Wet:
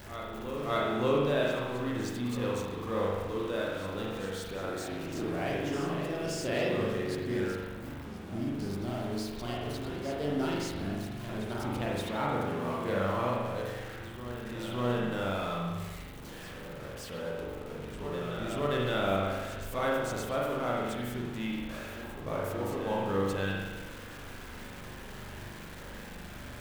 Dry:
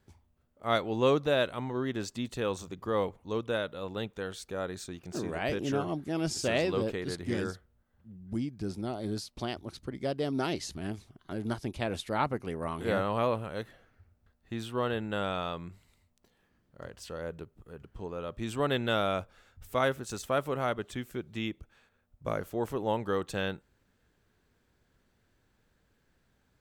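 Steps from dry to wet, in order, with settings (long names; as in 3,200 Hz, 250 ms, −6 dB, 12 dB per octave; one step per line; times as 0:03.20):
converter with a step at zero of −35.5 dBFS
backwards echo 574 ms −10.5 dB
spring reverb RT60 1.3 s, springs 41 ms, chirp 75 ms, DRR −4 dB
level −7.5 dB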